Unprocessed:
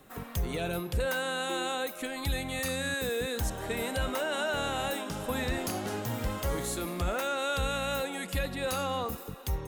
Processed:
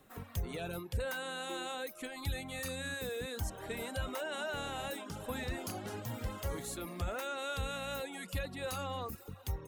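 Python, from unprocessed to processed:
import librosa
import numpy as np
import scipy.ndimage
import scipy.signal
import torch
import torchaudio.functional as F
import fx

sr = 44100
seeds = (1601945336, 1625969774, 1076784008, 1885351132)

y = fx.dereverb_blind(x, sr, rt60_s=0.56)
y = fx.peak_eq(y, sr, hz=95.0, db=8.0, octaves=0.21)
y = F.gain(torch.from_numpy(y), -6.5).numpy()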